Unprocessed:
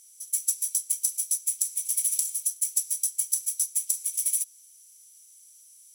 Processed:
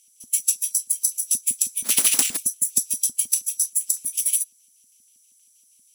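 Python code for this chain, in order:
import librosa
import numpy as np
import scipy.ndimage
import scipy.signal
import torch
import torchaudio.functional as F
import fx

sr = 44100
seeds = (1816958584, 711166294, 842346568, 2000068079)

y = fx.halfwave_hold(x, sr, at=(1.84, 2.37))
y = fx.filter_lfo_highpass(y, sr, shape='square', hz=6.3, low_hz=240.0, high_hz=2700.0, q=4.1)
y = fx.noise_reduce_blind(y, sr, reduce_db=10)
y = F.gain(torch.from_numpy(y), 5.0).numpy()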